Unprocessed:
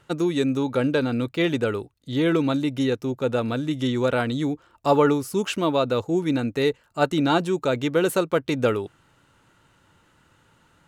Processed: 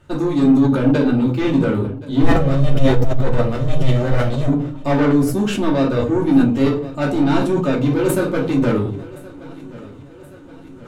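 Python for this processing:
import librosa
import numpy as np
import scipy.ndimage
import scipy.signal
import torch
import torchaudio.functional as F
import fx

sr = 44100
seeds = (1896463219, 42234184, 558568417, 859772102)

y = fx.lower_of_two(x, sr, delay_ms=1.6, at=(2.22, 4.48))
y = fx.low_shelf(y, sr, hz=450.0, db=10.0)
y = 10.0 ** (-15.5 / 20.0) * np.tanh(y / 10.0 ** (-15.5 / 20.0))
y = fx.echo_feedback(y, sr, ms=1073, feedback_pct=58, wet_db=-19.5)
y = fx.room_shoebox(y, sr, seeds[0], volume_m3=230.0, walls='furnished', distance_m=2.6)
y = fx.sustainer(y, sr, db_per_s=66.0)
y = y * 10.0 ** (-3.0 / 20.0)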